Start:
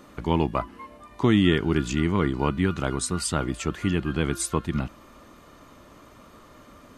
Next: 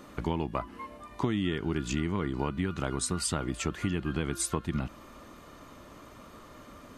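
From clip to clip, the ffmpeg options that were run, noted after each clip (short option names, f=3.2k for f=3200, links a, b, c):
-af "acompressor=threshold=-26dB:ratio=6"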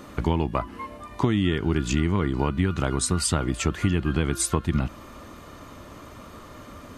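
-af "equalizer=f=85:w=1.5:g=5.5,volume=6dB"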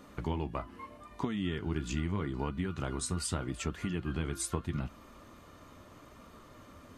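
-af "flanger=delay=4.2:depth=8.3:regen=-56:speed=0.8:shape=sinusoidal,volume=-6.5dB"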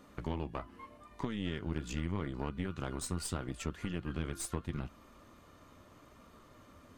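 -af "aeval=exprs='(tanh(20*val(0)+0.75)-tanh(0.75))/20':c=same"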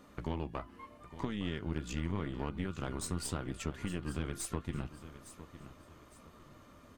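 -af "aecho=1:1:860|1720|2580:0.2|0.0658|0.0217"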